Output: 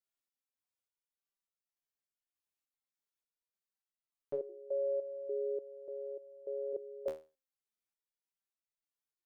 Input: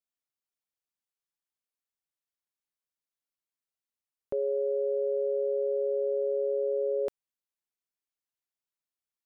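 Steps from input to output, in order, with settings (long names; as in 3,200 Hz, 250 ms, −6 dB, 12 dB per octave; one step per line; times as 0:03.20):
0:04.49–0:06.73: parametric band 350 Hz −12 dB 0.34 octaves
step-sequenced resonator 3.4 Hz 78–660 Hz
level +6.5 dB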